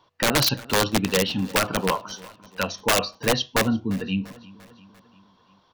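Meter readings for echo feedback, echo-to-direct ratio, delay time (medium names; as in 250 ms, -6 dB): 57%, -20.0 dB, 345 ms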